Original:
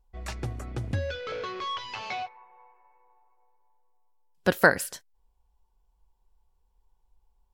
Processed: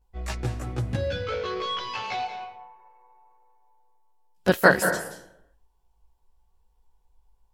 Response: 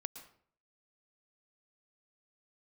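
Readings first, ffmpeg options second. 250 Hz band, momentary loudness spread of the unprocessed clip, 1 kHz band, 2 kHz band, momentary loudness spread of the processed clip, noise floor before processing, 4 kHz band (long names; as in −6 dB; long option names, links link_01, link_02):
+4.5 dB, 14 LU, +3.5 dB, +2.5 dB, 16 LU, −70 dBFS, +4.0 dB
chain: -filter_complex "[0:a]asplit=2[link_01][link_02];[1:a]atrim=start_sample=2205,asetrate=29106,aresample=44100,adelay=16[link_03];[link_02][link_03]afir=irnorm=-1:irlink=0,volume=5dB[link_04];[link_01][link_04]amix=inputs=2:normalize=0,volume=-2.5dB"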